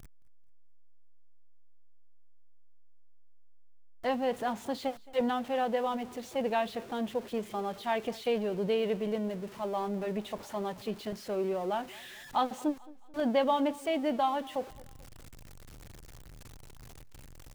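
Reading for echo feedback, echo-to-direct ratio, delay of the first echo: 42%, -21.0 dB, 0.219 s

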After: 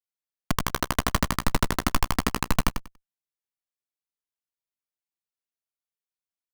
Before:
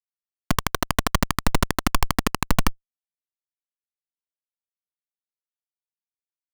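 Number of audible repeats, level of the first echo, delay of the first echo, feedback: 2, -7.0 dB, 95 ms, 17%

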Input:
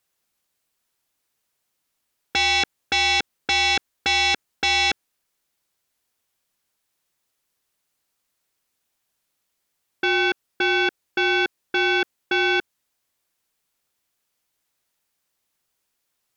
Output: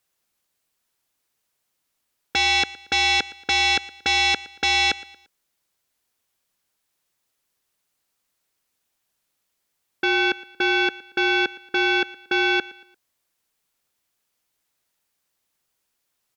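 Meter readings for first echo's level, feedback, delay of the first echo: -20.0 dB, 39%, 0.115 s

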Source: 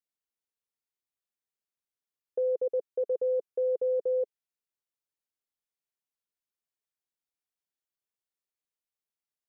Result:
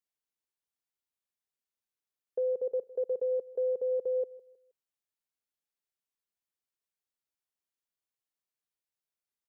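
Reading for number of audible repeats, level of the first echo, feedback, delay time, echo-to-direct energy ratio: 2, -19.0 dB, 32%, 0.158 s, -18.5 dB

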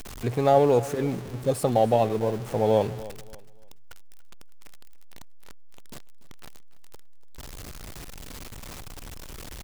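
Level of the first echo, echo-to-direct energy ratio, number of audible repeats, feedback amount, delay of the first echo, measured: -18.0 dB, -17.5 dB, 2, 29%, 0.289 s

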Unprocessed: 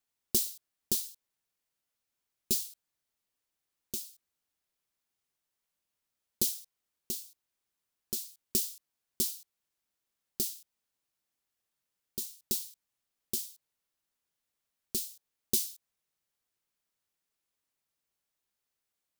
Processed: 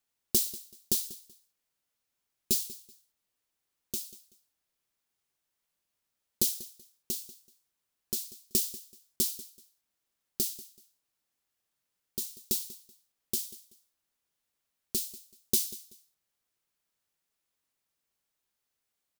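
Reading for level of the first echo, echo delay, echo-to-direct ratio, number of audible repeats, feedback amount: -18.0 dB, 0.19 s, -17.5 dB, 2, 25%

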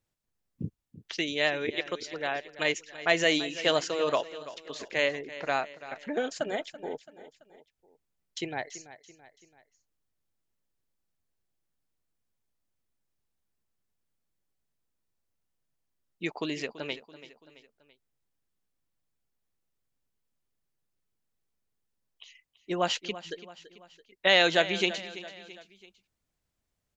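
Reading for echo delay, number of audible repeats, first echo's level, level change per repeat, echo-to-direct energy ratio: 0.334 s, 3, -15.5 dB, -6.0 dB, -14.5 dB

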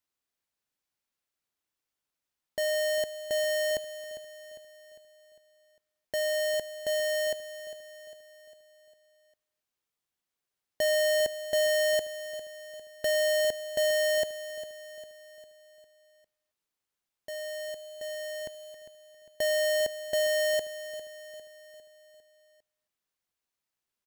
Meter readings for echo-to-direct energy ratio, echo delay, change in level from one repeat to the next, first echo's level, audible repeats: -12.0 dB, 0.402 s, -6.0 dB, -13.0 dB, 4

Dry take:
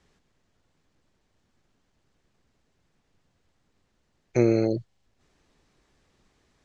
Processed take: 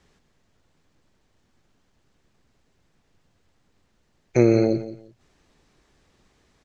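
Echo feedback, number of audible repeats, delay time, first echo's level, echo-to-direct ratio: 21%, 2, 0.174 s, -14.0 dB, -14.0 dB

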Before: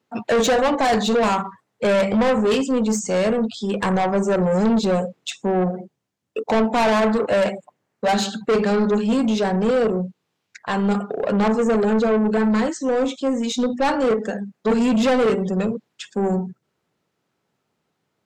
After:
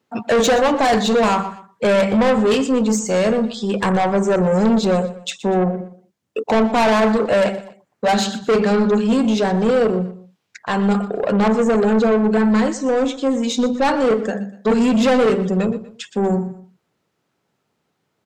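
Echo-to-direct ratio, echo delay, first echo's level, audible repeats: -15.5 dB, 0.121 s, -16.0 dB, 2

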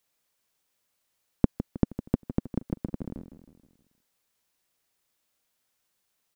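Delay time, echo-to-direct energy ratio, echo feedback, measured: 0.158 s, -11.0 dB, 50%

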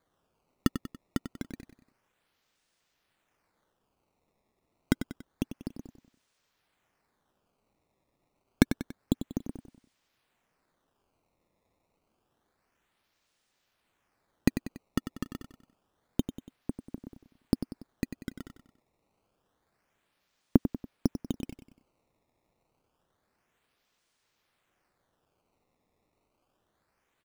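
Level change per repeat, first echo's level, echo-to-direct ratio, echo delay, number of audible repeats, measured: -6.5 dB, -10.5 dB, -9.5 dB, 95 ms, 3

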